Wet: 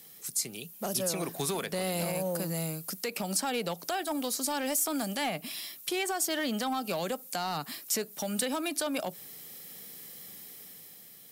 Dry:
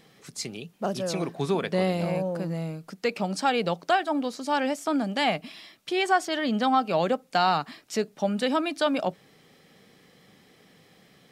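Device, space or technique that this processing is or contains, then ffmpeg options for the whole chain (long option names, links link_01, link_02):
FM broadcast chain: -filter_complex "[0:a]highpass=80,dynaudnorm=framelen=130:gausssize=13:maxgain=5.5dB,acrossover=split=500|2500[link_01][link_02][link_03];[link_01]acompressor=threshold=-25dB:ratio=4[link_04];[link_02]acompressor=threshold=-24dB:ratio=4[link_05];[link_03]acompressor=threshold=-39dB:ratio=4[link_06];[link_04][link_05][link_06]amix=inputs=3:normalize=0,aemphasis=mode=production:type=50fm,alimiter=limit=-17dB:level=0:latency=1:release=97,asoftclip=type=hard:threshold=-19.5dB,lowpass=frequency=15000:width=0.5412,lowpass=frequency=15000:width=1.3066,aemphasis=mode=production:type=50fm,volume=-6dB"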